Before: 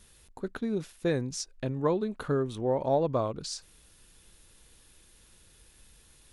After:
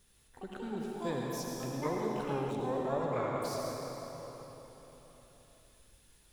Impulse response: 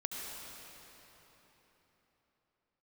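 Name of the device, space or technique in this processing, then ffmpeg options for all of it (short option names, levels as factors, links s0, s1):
shimmer-style reverb: -filter_complex "[0:a]asplit=2[s0][s1];[s1]asetrate=88200,aresample=44100,atempo=0.5,volume=0.501[s2];[s0][s2]amix=inputs=2:normalize=0[s3];[1:a]atrim=start_sample=2205[s4];[s3][s4]afir=irnorm=-1:irlink=0,asettb=1/sr,asplit=3[s5][s6][s7];[s5]atrim=end=2.514[s8];[s6]atrim=start=2.51:end=3.16,asetpts=PTS-STARTPTS,afade=t=in:d=0.004:c=qsin,afade=t=out:st=0.646:d=0.004:c=qsin,equalizer=f=1500:w=1.7:g=-7[s9];[s7]atrim=start=3.156[s10];[s8][s9]acrossfade=d=0.004:c1=hsin:c2=qsin[s11];[s11][s10]acrossfade=d=0.004:c1=qsin:c2=hsin,volume=0.422"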